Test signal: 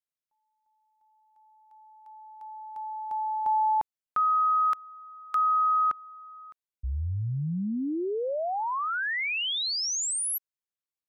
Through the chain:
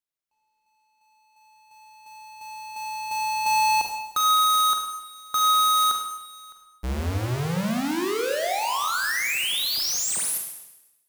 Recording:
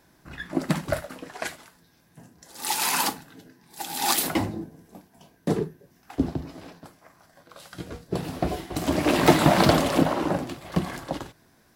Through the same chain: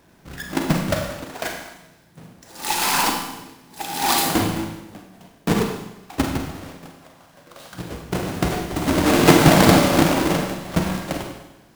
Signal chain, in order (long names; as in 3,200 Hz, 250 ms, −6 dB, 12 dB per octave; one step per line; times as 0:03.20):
each half-wave held at its own peak
four-comb reverb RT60 0.96 s, combs from 33 ms, DRR 2.5 dB
level −1 dB